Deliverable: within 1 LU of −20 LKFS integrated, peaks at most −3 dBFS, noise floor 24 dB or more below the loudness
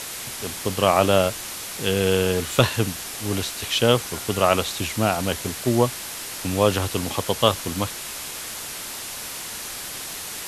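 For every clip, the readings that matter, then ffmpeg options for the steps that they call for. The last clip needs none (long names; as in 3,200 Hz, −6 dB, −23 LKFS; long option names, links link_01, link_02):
background noise floor −34 dBFS; target noise floor −48 dBFS; integrated loudness −23.5 LKFS; sample peak −2.0 dBFS; target loudness −20.0 LKFS
→ -af "afftdn=noise_reduction=14:noise_floor=-34"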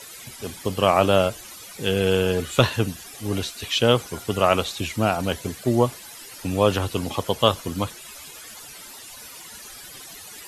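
background noise floor −42 dBFS; target noise floor −47 dBFS
→ -af "afftdn=noise_reduction=6:noise_floor=-42"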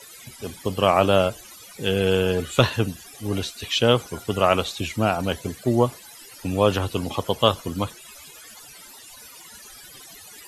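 background noise floor −45 dBFS; target noise floor −47 dBFS
→ -af "afftdn=noise_reduction=6:noise_floor=-45"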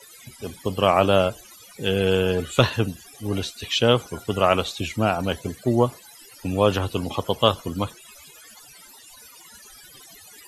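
background noise floor −48 dBFS; integrated loudness −23.0 LKFS; sample peak −2.5 dBFS; target loudness −20.0 LKFS
→ -af "volume=3dB,alimiter=limit=-3dB:level=0:latency=1"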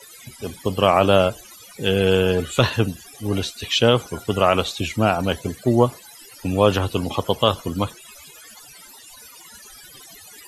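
integrated loudness −20.5 LKFS; sample peak −3.0 dBFS; background noise floor −45 dBFS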